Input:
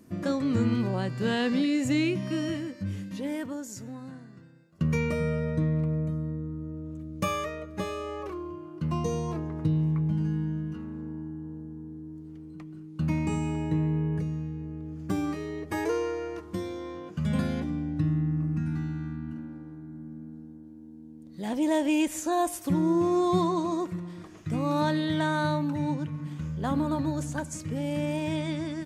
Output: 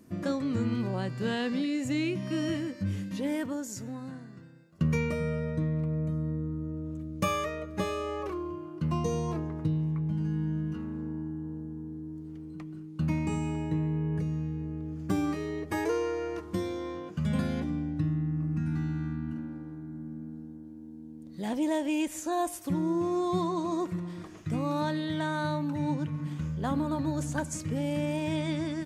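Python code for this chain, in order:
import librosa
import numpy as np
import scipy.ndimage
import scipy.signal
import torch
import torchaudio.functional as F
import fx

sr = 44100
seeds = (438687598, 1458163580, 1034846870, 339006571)

y = fx.rider(x, sr, range_db=3, speed_s=0.5)
y = F.gain(torch.from_numpy(y), -1.5).numpy()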